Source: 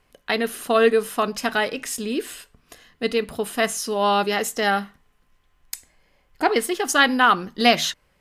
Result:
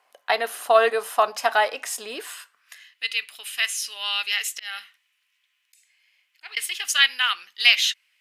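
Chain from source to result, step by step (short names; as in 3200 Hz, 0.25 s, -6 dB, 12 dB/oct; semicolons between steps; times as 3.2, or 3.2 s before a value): high-pass sweep 740 Hz -> 2500 Hz, 2.14–2.93; 4.44–6.57 auto swell 0.243 s; gain -1 dB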